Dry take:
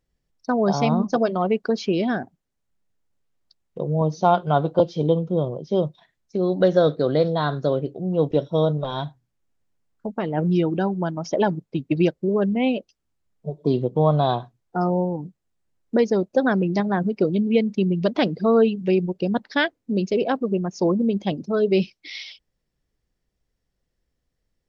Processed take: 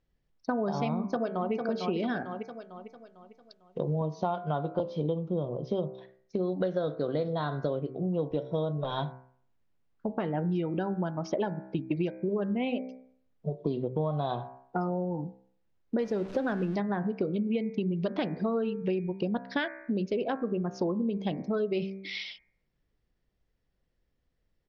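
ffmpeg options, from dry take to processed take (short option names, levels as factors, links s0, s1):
-filter_complex "[0:a]asplit=2[s0][s1];[s1]afade=t=in:st=0.96:d=0.01,afade=t=out:st=1.52:d=0.01,aecho=0:1:450|900|1350|1800|2250:0.446684|0.178673|0.0714694|0.0285877|0.0114351[s2];[s0][s2]amix=inputs=2:normalize=0,asettb=1/sr,asplit=3[s3][s4][s5];[s3]atrim=end=2.024[s6];[s4]atrim=start=2.02:end=4.06,asetpts=PTS-STARTPTS,afade=t=in:d=0.004:c=qsin,afade=t=out:st=2.036:d=0.004:c=qsin,highshelf=f=3000:g=10[s7];[s5]atrim=start=4.056[s8];[s6][s7]acrossfade=d=0.004:c1=hsin:c2=qsin[s9];[s9][s8]acrossfade=d=0.004:c1=qsin:c2=hsin,asettb=1/sr,asplit=3[s10][s11][s12];[s10]atrim=end=16.004[s13];[s11]atrim=start=16:end=16.76,asetpts=PTS-STARTPTS,afade=t=in:d=0.004:c=qsin,afade=t=out:st=0.756:d=0.004:c=qsin,aeval=exprs='val(0)+0.5*0.0237*sgn(val(0))':c=same[s14];[s12]atrim=start=16.756[s15];[s13][s14]acrossfade=d=0.004:c1=hsin:c2=qsin[s16];[s16][s15]acrossfade=d=0.004:c1=qsin:c2=hsin,lowpass=3900,bandreject=f=64.42:t=h:w=4,bandreject=f=128.84:t=h:w=4,bandreject=f=193.26:t=h:w=4,bandreject=f=257.68:t=h:w=4,bandreject=f=322.1:t=h:w=4,bandreject=f=386.52:t=h:w=4,bandreject=f=450.94:t=h:w=4,bandreject=f=515.36:t=h:w=4,bandreject=f=579.78:t=h:w=4,bandreject=f=644.2:t=h:w=4,bandreject=f=708.62:t=h:w=4,bandreject=f=773.04:t=h:w=4,bandreject=f=837.46:t=h:w=4,bandreject=f=901.88:t=h:w=4,bandreject=f=966.3:t=h:w=4,bandreject=f=1030.72:t=h:w=4,bandreject=f=1095.14:t=h:w=4,bandreject=f=1159.56:t=h:w=4,bandreject=f=1223.98:t=h:w=4,bandreject=f=1288.4:t=h:w=4,bandreject=f=1352.82:t=h:w=4,bandreject=f=1417.24:t=h:w=4,bandreject=f=1481.66:t=h:w=4,bandreject=f=1546.08:t=h:w=4,bandreject=f=1610.5:t=h:w=4,bandreject=f=1674.92:t=h:w=4,bandreject=f=1739.34:t=h:w=4,bandreject=f=1803.76:t=h:w=4,bandreject=f=1868.18:t=h:w=4,bandreject=f=1932.6:t=h:w=4,bandreject=f=1997.02:t=h:w=4,bandreject=f=2061.44:t=h:w=4,bandreject=f=2125.86:t=h:w=4,bandreject=f=2190.28:t=h:w=4,bandreject=f=2254.7:t=h:w=4,bandreject=f=2319.12:t=h:w=4,bandreject=f=2383.54:t=h:w=4,bandreject=f=2447.96:t=h:w=4,acompressor=threshold=0.0447:ratio=6"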